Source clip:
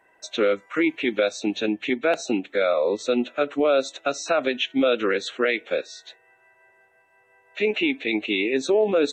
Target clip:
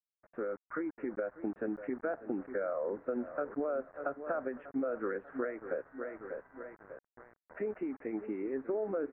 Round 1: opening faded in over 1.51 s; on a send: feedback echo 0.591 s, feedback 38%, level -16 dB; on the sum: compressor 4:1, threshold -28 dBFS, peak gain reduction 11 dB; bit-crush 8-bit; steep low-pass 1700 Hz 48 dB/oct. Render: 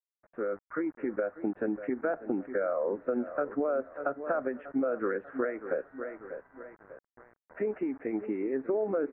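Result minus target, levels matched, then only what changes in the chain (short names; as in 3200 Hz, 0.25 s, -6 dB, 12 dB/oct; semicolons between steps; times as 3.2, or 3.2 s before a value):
compressor: peak gain reduction -5 dB
change: compressor 4:1, threshold -34.5 dBFS, peak gain reduction 15.5 dB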